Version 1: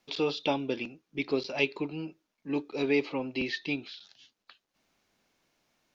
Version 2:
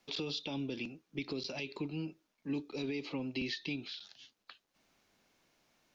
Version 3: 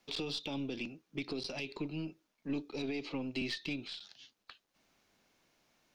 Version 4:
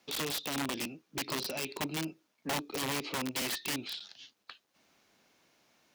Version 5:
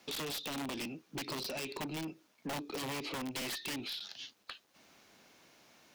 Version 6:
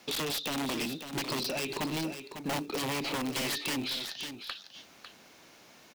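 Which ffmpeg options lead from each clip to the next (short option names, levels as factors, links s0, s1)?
-filter_complex "[0:a]alimiter=level_in=1.06:limit=0.0631:level=0:latency=1:release=69,volume=0.944,acrossover=split=280|3000[s0][s1][s2];[s1]acompressor=threshold=0.00562:ratio=6[s3];[s0][s3][s2]amix=inputs=3:normalize=0,volume=1.12"
-af "aeval=exprs='0.0668*(cos(1*acos(clip(val(0)/0.0668,-1,1)))-cos(1*PI/2))+0.00299*(cos(6*acos(clip(val(0)/0.0668,-1,1)))-cos(6*PI/2))':c=same"
-af "aeval=exprs='(mod(39.8*val(0)+1,2)-1)/39.8':c=same,highpass=f=130:p=1,volume=1.68"
-af "asoftclip=type=tanh:threshold=0.015,acompressor=threshold=0.00501:ratio=2.5,volume=2"
-filter_complex "[0:a]acrossover=split=2100[s0][s1];[s0]acrusher=bits=5:mode=log:mix=0:aa=0.000001[s2];[s2][s1]amix=inputs=2:normalize=0,aecho=1:1:550:0.335,volume=2"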